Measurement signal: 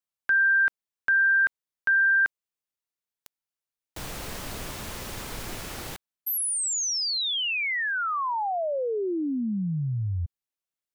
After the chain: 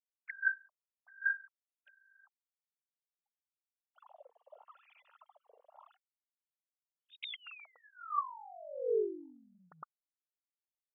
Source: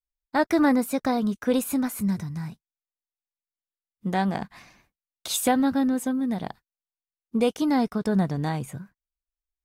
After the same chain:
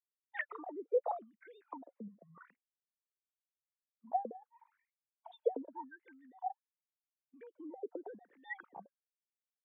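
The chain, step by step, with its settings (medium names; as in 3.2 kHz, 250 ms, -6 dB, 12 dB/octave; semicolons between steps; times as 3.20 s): formants replaced by sine waves; compression 6:1, threshold -33 dBFS; wah-wah 0.86 Hz 450–2200 Hz, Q 8.7; spectral noise reduction 14 dB; trim +9 dB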